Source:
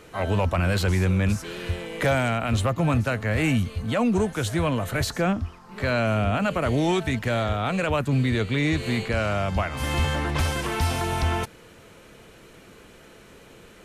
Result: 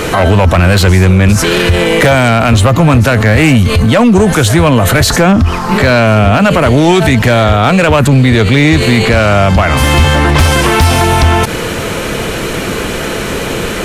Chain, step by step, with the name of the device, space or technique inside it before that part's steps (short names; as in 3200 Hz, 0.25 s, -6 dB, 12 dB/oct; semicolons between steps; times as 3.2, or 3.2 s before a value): loud club master (compressor 2:1, threshold -26 dBFS, peak gain reduction 5.5 dB; hard clip -22 dBFS, distortion -19 dB; maximiser +33.5 dB); gain -1 dB